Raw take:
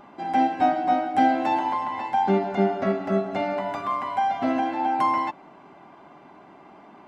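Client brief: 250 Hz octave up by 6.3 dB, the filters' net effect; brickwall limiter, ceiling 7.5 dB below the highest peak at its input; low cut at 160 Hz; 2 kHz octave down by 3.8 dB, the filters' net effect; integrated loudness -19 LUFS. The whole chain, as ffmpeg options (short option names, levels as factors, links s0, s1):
-af "highpass=160,equalizer=f=250:t=o:g=8.5,equalizer=f=2000:t=o:g=-5,volume=1.78,alimiter=limit=0.398:level=0:latency=1"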